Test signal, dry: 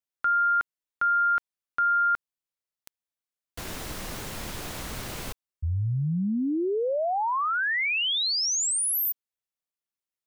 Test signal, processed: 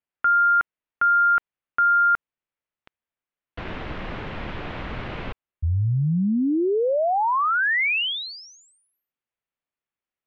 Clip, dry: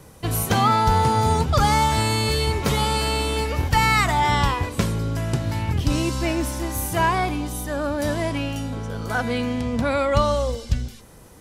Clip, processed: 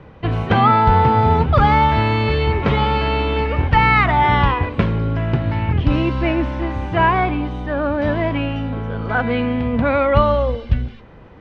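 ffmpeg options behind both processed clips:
-af "lowpass=f=2.9k:w=0.5412,lowpass=f=2.9k:w=1.3066,volume=5dB"

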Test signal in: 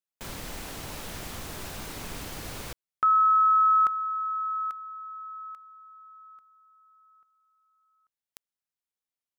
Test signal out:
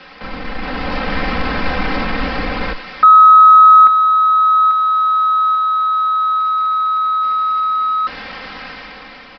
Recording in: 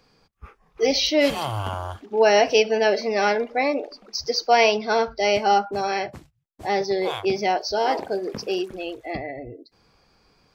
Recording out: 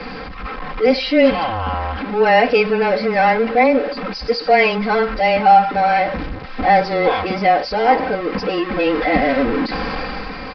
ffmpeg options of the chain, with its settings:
-af "aeval=exprs='val(0)+0.5*0.0631*sgn(val(0))':c=same,aecho=1:1:3.8:0.9,dynaudnorm=f=140:g=11:m=9.5dB,afreqshift=-14,highshelf=f=2.7k:t=q:w=1.5:g=-6.5,aresample=11025,aresample=44100,volume=-1dB"

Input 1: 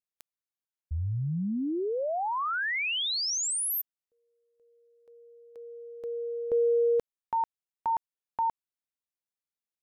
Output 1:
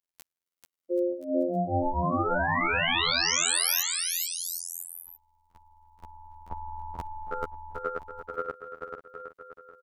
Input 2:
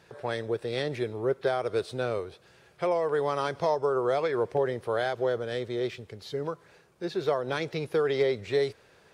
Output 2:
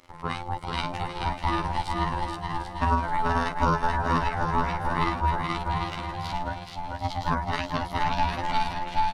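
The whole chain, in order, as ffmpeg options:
-af "afftfilt=real='hypot(re,im)*cos(PI*b)':imag='0':win_size=2048:overlap=0.75,aecho=1:1:440|770|1018|1203|1342:0.631|0.398|0.251|0.158|0.1,aeval=exprs='val(0)*sin(2*PI*440*n/s)':c=same,volume=8dB"

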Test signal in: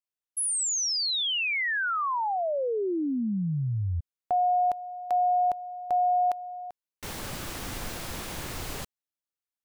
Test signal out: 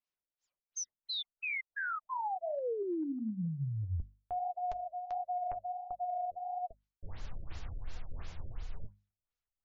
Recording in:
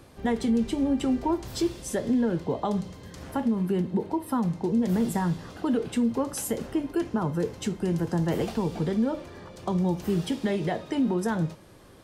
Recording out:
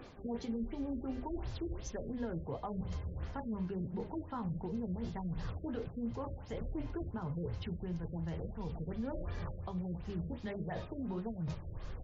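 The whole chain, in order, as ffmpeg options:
-af "flanger=delay=4:depth=8.7:regen=52:speed=1.5:shape=sinusoidal,asubboost=boost=11.5:cutoff=78,areverse,acompressor=threshold=-35dB:ratio=20:attack=0.66:release=478:knee=1:detection=peak,areverse,alimiter=level_in=12dB:limit=-24dB:level=0:latency=1:release=248,volume=-12dB,bandreject=f=50:t=h:w=6,bandreject=f=100:t=h:w=6,bandreject=f=150:t=h:w=6,bandreject=f=200:t=h:w=6,bandreject=f=250:t=h:w=6,afftfilt=real='re*lt(b*sr/1024,620*pow(7500/620,0.5+0.5*sin(2*PI*2.8*pts/sr)))':imag='im*lt(b*sr/1024,620*pow(7500/620,0.5+0.5*sin(2*PI*2.8*pts/sr)))':win_size=1024:overlap=0.75,volume=5.5dB"

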